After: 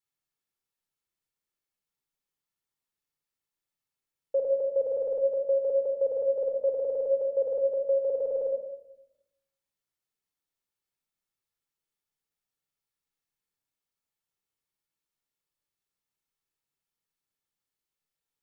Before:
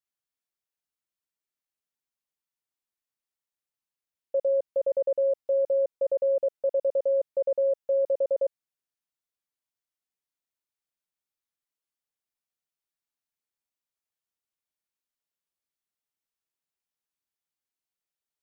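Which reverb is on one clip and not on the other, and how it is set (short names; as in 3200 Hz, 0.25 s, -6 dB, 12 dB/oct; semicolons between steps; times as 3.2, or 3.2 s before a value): shoebox room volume 2400 m³, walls furnished, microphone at 4.2 m; gain -2 dB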